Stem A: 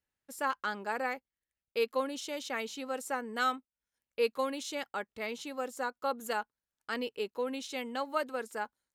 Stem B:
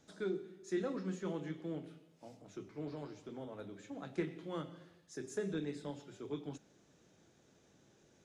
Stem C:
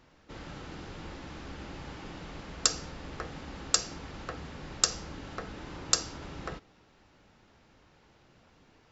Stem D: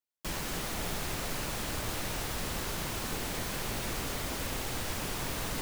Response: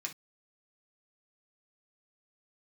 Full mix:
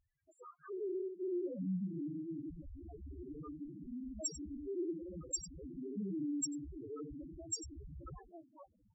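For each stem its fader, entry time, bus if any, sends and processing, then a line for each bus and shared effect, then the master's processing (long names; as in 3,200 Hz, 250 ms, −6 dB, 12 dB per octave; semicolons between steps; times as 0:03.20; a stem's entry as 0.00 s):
−8.5 dB, 0.00 s, send −16.5 dB, no echo send, sub-harmonics by changed cycles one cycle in 3, inverted; upward compression, threshold −39 dBFS; two-band tremolo in antiphase 3 Hz, depth 50%, crossover 1,900 Hz
−5.0 dB, 0.60 s, send −18.5 dB, echo send −11 dB, every bin's largest magnitude spread in time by 240 ms; high-shelf EQ 2,500 Hz +8.5 dB; auto-filter low-pass square 0.5 Hz 260–2,500 Hz
−0.5 dB, 1.60 s, send −13 dB, echo send −10 dB, bit-depth reduction 10 bits, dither none
−5.0 dB, 0.90 s, no send, echo send −12.5 dB, wave folding −37.5 dBFS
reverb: on, pre-delay 3 ms
echo: single-tap delay 96 ms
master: spectral peaks only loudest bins 2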